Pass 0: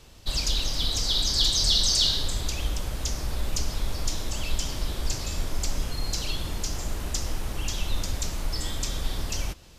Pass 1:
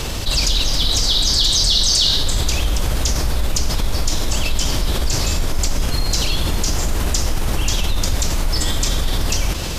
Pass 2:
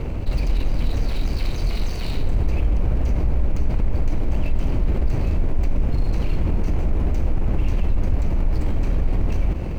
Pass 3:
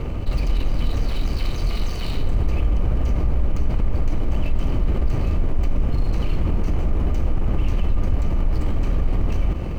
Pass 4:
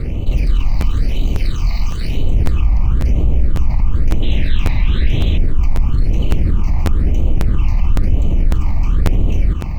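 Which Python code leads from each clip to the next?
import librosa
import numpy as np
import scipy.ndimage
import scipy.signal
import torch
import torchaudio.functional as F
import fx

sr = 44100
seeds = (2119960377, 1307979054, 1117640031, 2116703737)

y1 = fx.env_flatten(x, sr, amount_pct=70)
y1 = y1 * 10.0 ** (5.0 / 20.0)
y2 = scipy.signal.medfilt(y1, 25)
y2 = fx.curve_eq(y2, sr, hz=(250.0, 1200.0, 2300.0, 3300.0, 9500.0), db=(0, -6, 1, -8, -12))
y3 = fx.small_body(y2, sr, hz=(1200.0, 3000.0), ring_ms=45, db=10)
y4 = fx.spec_paint(y3, sr, seeds[0], shape='noise', start_s=4.22, length_s=1.16, low_hz=1500.0, high_hz=4100.0, level_db=-36.0)
y4 = fx.phaser_stages(y4, sr, stages=8, low_hz=430.0, high_hz=1600.0, hz=1.0, feedback_pct=30)
y4 = fx.buffer_crackle(y4, sr, first_s=0.8, period_s=0.55, block=512, kind='repeat')
y4 = y4 * 10.0 ** (5.0 / 20.0)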